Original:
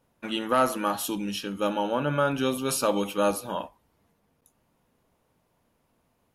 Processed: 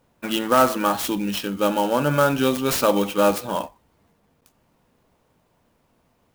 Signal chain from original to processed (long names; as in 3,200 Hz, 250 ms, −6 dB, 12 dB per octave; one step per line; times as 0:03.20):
converter with an unsteady clock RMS 0.025 ms
level +6 dB